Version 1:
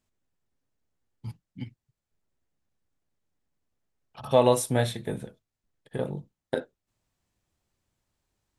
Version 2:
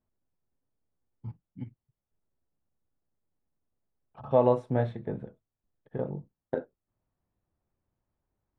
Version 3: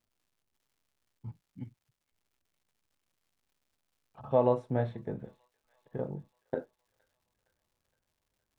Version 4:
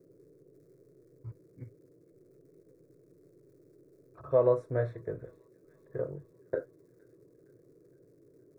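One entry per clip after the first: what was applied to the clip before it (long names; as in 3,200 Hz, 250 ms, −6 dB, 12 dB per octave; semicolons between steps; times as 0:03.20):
low-pass filter 1,200 Hz 12 dB per octave; level −2 dB
surface crackle 250 per second −62 dBFS; delay with a high-pass on its return 465 ms, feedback 62%, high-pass 2,000 Hz, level −21 dB; level −3 dB
noise in a band 120–430 Hz −59 dBFS; phaser with its sweep stopped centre 820 Hz, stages 6; level +3 dB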